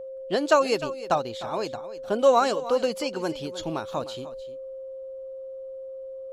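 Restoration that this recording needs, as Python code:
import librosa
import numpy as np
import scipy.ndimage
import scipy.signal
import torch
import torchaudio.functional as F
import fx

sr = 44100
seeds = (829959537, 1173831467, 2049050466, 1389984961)

y = fx.notch(x, sr, hz=530.0, q=30.0)
y = fx.fix_echo_inverse(y, sr, delay_ms=305, level_db=-15.0)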